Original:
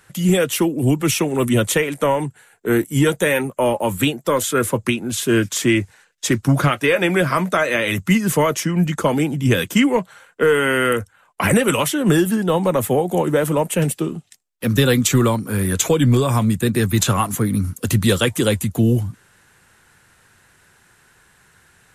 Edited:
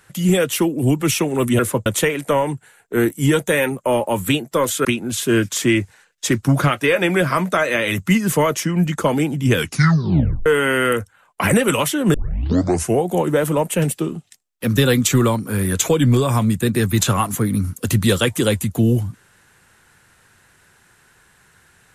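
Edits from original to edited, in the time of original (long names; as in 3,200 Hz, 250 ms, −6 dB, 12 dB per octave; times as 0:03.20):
0:04.58–0:04.85: move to 0:01.59
0:09.54: tape stop 0.92 s
0:12.14: tape start 0.88 s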